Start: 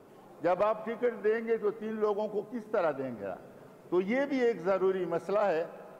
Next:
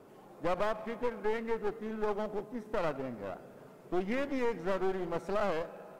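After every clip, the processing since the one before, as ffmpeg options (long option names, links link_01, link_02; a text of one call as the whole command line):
ffmpeg -i in.wav -af "aeval=exprs='clip(val(0),-1,0.0106)':channel_layout=same,volume=-1dB" out.wav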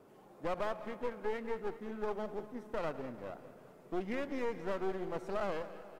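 ffmpeg -i in.wav -af "aecho=1:1:203|406|609|812|1015:0.178|0.0978|0.0538|0.0296|0.0163,volume=-4.5dB" out.wav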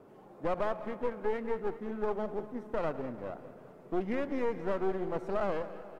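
ffmpeg -i in.wav -af "highshelf=frequency=2500:gain=-10,volume=5dB" out.wav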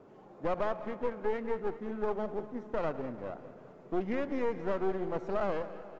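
ffmpeg -i in.wav -af "aresample=16000,aresample=44100" out.wav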